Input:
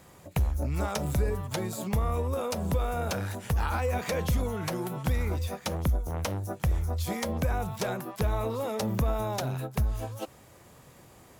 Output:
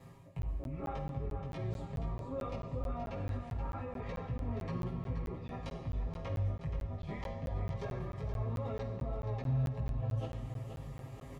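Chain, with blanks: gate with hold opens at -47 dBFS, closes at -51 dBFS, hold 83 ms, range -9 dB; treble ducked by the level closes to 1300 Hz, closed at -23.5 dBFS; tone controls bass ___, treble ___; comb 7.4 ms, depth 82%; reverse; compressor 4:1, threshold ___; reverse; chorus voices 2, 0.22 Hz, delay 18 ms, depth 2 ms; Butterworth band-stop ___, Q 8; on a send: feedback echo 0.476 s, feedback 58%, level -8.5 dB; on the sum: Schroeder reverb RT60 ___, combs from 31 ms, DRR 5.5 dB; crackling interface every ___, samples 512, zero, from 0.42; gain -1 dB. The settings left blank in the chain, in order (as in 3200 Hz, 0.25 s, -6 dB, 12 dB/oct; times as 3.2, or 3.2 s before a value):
+8 dB, -9 dB, -35 dBFS, 1500 Hz, 1.3 s, 0.22 s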